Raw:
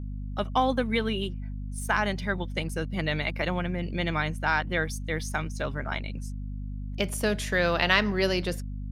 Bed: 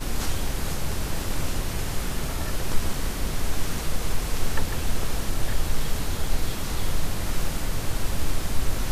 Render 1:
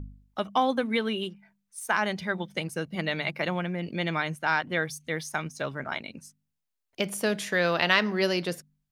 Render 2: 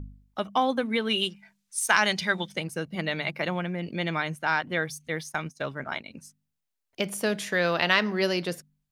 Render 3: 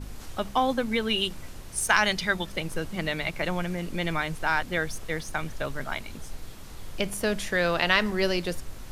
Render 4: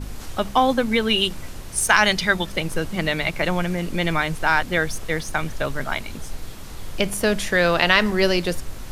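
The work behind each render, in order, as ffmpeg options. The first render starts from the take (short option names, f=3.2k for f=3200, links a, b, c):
-af "bandreject=f=50:t=h:w=4,bandreject=f=100:t=h:w=4,bandreject=f=150:t=h:w=4,bandreject=f=200:t=h:w=4,bandreject=f=250:t=h:w=4"
-filter_complex "[0:a]asplit=3[a][b][c];[a]afade=t=out:st=1.09:d=0.02[d];[b]equalizer=f=5.8k:w=0.34:g=12.5,afade=t=in:st=1.09:d=0.02,afade=t=out:st=2.54:d=0.02[e];[c]afade=t=in:st=2.54:d=0.02[f];[d][e][f]amix=inputs=3:normalize=0,asettb=1/sr,asplit=3[g][h][i];[g]atrim=end=5.084[j];[h]atrim=start=5.08:end=6.11,asetpts=PTS-STARTPTS,afade=t=in:d=0.004:c=qsin,afade=t=out:st=1.026:d=0.004:c=qsin,agate=range=-33dB:threshold=-37dB:ratio=3:release=100:detection=peak[k];[i]atrim=start=6.106[l];[j][k]acrossfade=d=0.004:c1=hsin:c2=qsin[m];[m][l]acrossfade=d=0.004:c1=qsin:c2=hsin"
-filter_complex "[1:a]volume=-15dB[a];[0:a][a]amix=inputs=2:normalize=0"
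-af "volume=6.5dB,alimiter=limit=-2dB:level=0:latency=1"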